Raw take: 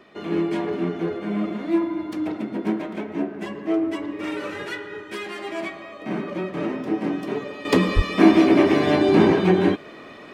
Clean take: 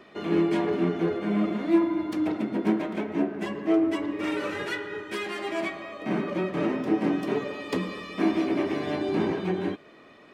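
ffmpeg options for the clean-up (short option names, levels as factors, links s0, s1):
-filter_complex "[0:a]asplit=3[s0][s1][s2];[s0]afade=t=out:st=7.95:d=0.02[s3];[s1]highpass=f=140:w=0.5412,highpass=f=140:w=1.3066,afade=t=in:st=7.95:d=0.02,afade=t=out:st=8.07:d=0.02[s4];[s2]afade=t=in:st=8.07:d=0.02[s5];[s3][s4][s5]amix=inputs=3:normalize=0,asetnsamples=n=441:p=0,asendcmd='7.65 volume volume -10.5dB',volume=1"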